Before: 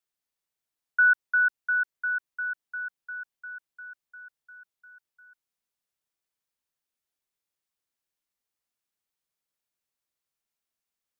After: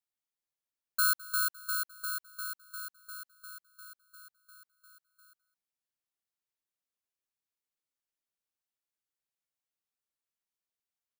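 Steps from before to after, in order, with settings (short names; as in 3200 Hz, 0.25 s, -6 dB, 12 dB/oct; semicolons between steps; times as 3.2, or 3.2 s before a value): FFT order left unsorted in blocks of 16 samples; on a send: echo 0.209 s -20.5 dB; on the sum: gain -7.5 dB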